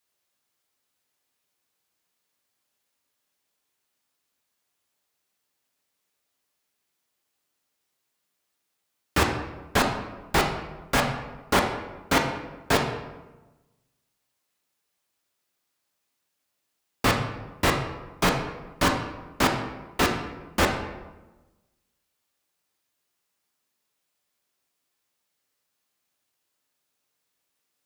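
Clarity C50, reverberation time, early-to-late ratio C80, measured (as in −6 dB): 6.0 dB, 1.1 s, 8.0 dB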